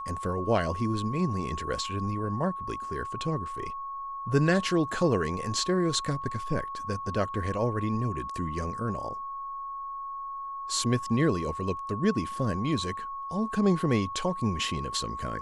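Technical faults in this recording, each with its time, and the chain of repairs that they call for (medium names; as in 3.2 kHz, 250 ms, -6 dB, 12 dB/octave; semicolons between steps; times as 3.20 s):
whine 1.1 kHz -34 dBFS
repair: band-stop 1.1 kHz, Q 30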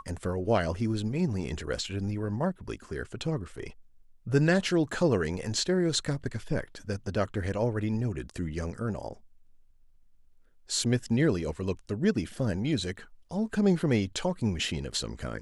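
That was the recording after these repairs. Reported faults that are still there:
nothing left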